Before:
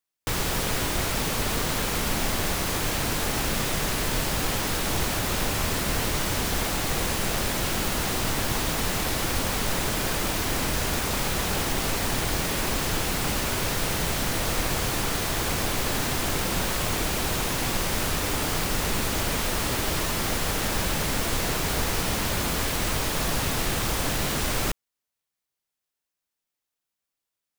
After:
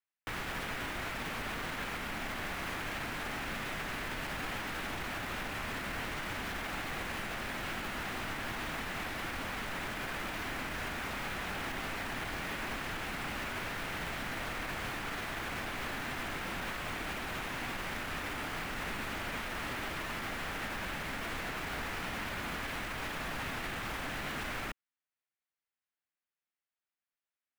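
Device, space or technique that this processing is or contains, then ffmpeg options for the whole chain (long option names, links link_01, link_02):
DJ mixer with the lows and highs turned down: -filter_complex "[0:a]equalizer=frequency=250:width_type=o:width=1:gain=5,equalizer=frequency=500:width_type=o:width=1:gain=-7,equalizer=frequency=1000:width_type=o:width=1:gain=-6,acrossover=split=530 2500:gain=0.2 1 0.112[link_01][link_02][link_03];[link_01][link_02][link_03]amix=inputs=3:normalize=0,alimiter=level_in=5dB:limit=-24dB:level=0:latency=1:release=34,volume=-5dB"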